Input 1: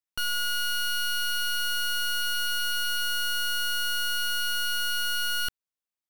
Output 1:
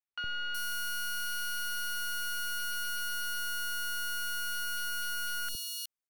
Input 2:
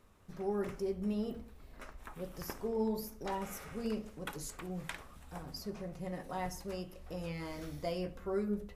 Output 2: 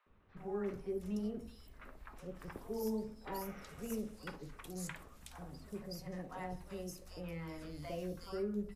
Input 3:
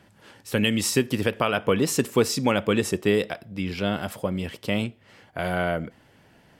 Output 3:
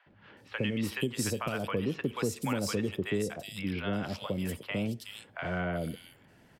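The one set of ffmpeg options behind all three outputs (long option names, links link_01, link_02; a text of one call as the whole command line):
ffmpeg -i in.wav -filter_complex "[0:a]acrossover=split=750|3400[link_01][link_02][link_03];[link_01]adelay=60[link_04];[link_03]adelay=370[link_05];[link_04][link_02][link_05]amix=inputs=3:normalize=0,acrossover=split=110|260[link_06][link_07][link_08];[link_06]acompressor=threshold=-37dB:ratio=4[link_09];[link_07]acompressor=threshold=-32dB:ratio=4[link_10];[link_08]acompressor=threshold=-29dB:ratio=4[link_11];[link_09][link_10][link_11]amix=inputs=3:normalize=0,volume=-3dB" out.wav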